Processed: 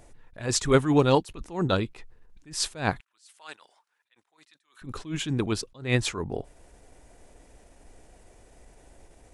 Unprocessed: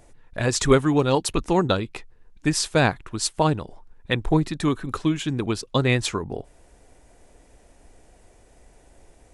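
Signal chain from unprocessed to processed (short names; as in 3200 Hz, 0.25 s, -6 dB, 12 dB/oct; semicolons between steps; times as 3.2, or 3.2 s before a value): 3–4.82 HPF 1500 Hz 12 dB/oct; attack slew limiter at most 160 dB/s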